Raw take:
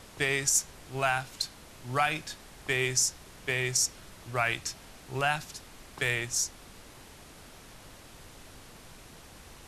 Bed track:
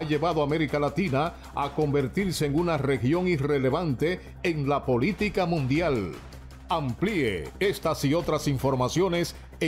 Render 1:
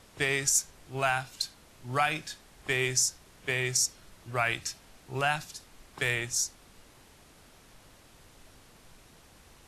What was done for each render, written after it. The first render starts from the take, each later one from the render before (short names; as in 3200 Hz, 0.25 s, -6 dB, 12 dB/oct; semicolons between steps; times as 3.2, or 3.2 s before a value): noise print and reduce 6 dB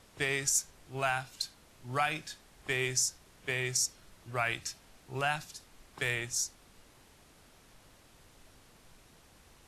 gain -3.5 dB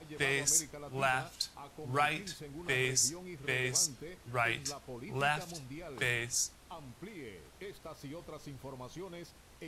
add bed track -21.5 dB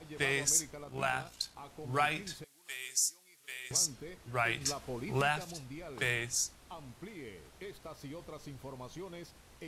0.84–1.57 AM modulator 58 Hz, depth 35%; 2.44–3.71 differentiator; 4.61–5.22 gain +5 dB